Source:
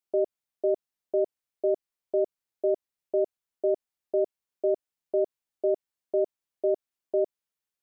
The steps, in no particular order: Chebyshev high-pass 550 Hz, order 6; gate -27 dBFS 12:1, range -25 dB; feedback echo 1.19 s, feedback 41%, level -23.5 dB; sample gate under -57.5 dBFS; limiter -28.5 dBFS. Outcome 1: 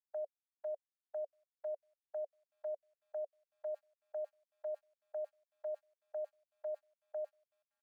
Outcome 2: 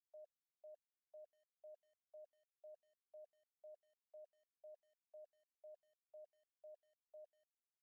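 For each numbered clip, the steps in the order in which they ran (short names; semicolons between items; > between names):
feedback echo > sample gate > gate > limiter > Chebyshev high-pass; Chebyshev high-pass > limiter > feedback echo > sample gate > gate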